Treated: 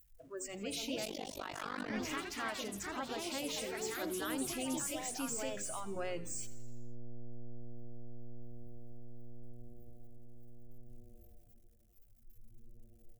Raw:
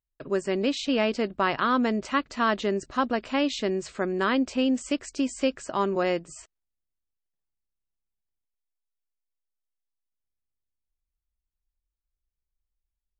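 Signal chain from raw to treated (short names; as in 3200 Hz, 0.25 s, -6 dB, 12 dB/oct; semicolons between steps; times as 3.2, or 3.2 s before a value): zero-crossing step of -34 dBFS; graphic EQ 250/500/1000/2000/4000 Hz -11/-4/-10/-4/-8 dB; limiter -28 dBFS, peak gain reduction 8 dB; spectral noise reduction 23 dB; de-hum 47.37 Hz, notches 13; echoes that change speed 0.37 s, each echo +3 st, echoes 3; frequency-shifting echo 83 ms, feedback 62%, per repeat -120 Hz, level -16.5 dB; 1.05–1.9 AM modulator 49 Hz, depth 100%; gain -3 dB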